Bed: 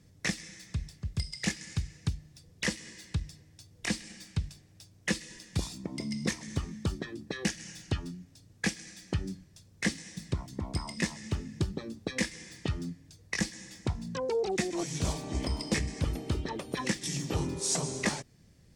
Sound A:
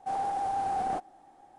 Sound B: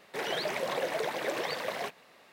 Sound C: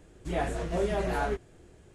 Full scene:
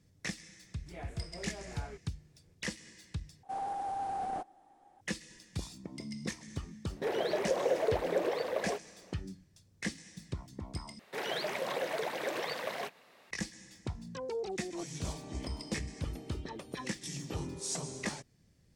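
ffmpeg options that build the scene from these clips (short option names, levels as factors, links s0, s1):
-filter_complex "[2:a]asplit=2[s0][s1];[0:a]volume=0.447[s2];[3:a]equalizer=f=2200:t=o:w=0.3:g=9[s3];[s0]equalizer=f=430:w=0.75:g=13.5[s4];[s2]asplit=3[s5][s6][s7];[s5]atrim=end=3.434[s8];[1:a]atrim=end=1.58,asetpts=PTS-STARTPTS,volume=0.501[s9];[s6]atrim=start=5.006:end=10.994[s10];[s1]atrim=end=2.32,asetpts=PTS-STARTPTS,volume=0.708[s11];[s7]atrim=start=13.306[s12];[s3]atrim=end=1.94,asetpts=PTS-STARTPTS,volume=0.141,afade=t=in:d=0.004:c=hsin,afade=t=out:st=1.936:d=0.004:c=hsin,adelay=610[s13];[s4]atrim=end=2.32,asetpts=PTS-STARTPTS,volume=0.376,afade=t=in:d=0.004:c=hsin,afade=t=out:st=2.316:d=0.004:c=hsin,adelay=6880[s14];[s8][s9]acrossfade=d=0.004:c1=hsin:c2=hsin[s15];[s15][s10]acrossfade=d=0.004:c1=hsin:c2=hsin[s16];[s16][s11]acrossfade=d=0.004:c1=hsin:c2=hsin[s17];[s17][s12]acrossfade=d=0.004:c1=hsin:c2=hsin[s18];[s18][s13][s14]amix=inputs=3:normalize=0"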